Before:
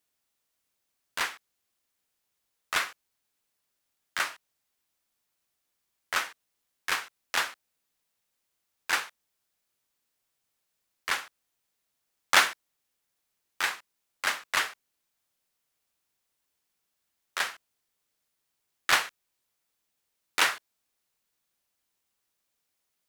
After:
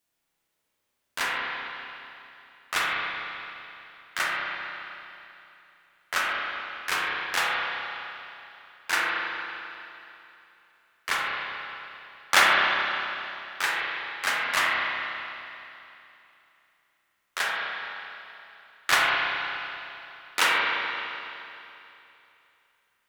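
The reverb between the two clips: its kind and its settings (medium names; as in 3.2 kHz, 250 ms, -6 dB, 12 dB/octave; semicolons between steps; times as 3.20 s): spring tank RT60 2.9 s, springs 30/42 ms, chirp 50 ms, DRR -4.5 dB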